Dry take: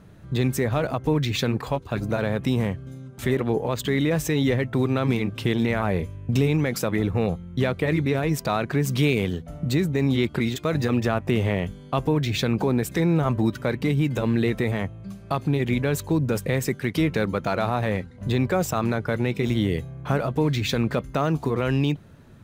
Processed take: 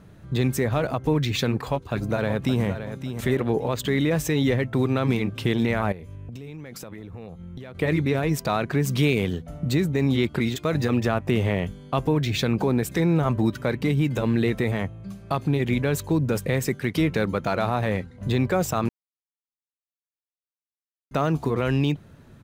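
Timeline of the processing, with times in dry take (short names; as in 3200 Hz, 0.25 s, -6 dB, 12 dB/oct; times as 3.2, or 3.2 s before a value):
1.7–2.63 echo throw 0.57 s, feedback 25%, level -9.5 dB
5.92–7.75 compressor 16:1, threshold -34 dBFS
18.89–21.11 mute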